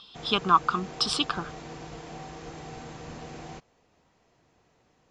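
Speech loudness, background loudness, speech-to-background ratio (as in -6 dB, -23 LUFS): -26.0 LUFS, -42.0 LUFS, 16.0 dB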